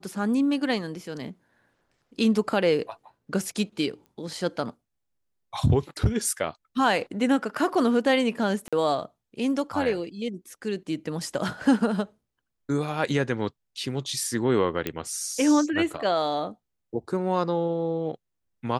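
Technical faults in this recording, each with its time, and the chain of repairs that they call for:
4.06 s: pop -36 dBFS
8.68–8.73 s: dropout 46 ms
14.87 s: pop -13 dBFS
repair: de-click; interpolate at 8.68 s, 46 ms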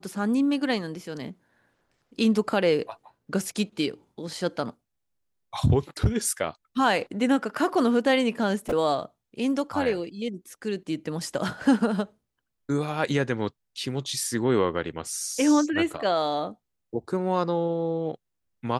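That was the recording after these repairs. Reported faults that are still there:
nothing left

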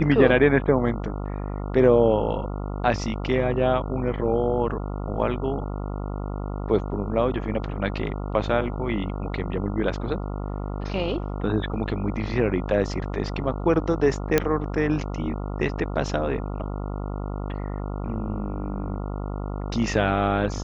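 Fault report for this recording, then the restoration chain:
buzz 50 Hz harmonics 28 -30 dBFS
14.38 s: pop -5 dBFS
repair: de-click; de-hum 50 Hz, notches 28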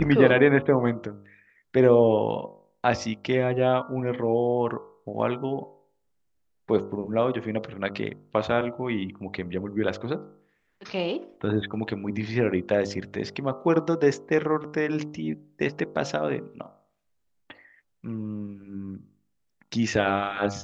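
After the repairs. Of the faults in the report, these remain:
nothing left

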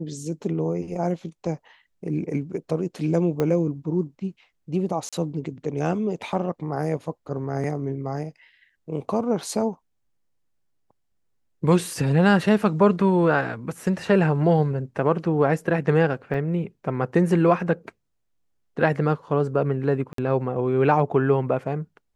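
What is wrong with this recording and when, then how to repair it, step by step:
3.40 s: pop -12 dBFS
5.09–5.13 s: dropout 36 ms
16.34–16.35 s: dropout 5.8 ms
20.13–20.18 s: dropout 53 ms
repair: de-click; interpolate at 5.09 s, 36 ms; interpolate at 16.34 s, 5.8 ms; interpolate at 20.13 s, 53 ms

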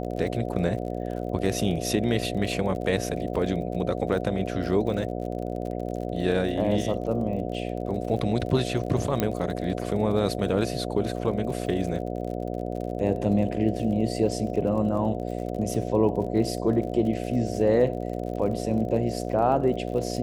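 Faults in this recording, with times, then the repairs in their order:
buzz 60 Hz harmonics 12 -31 dBFS
crackle 45 per s -35 dBFS
9.20 s: pop -9 dBFS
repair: de-click; de-hum 60 Hz, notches 12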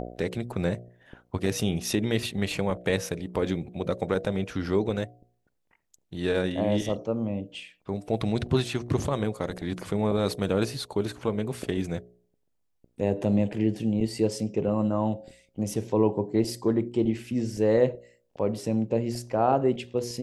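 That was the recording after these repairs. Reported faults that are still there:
nothing left

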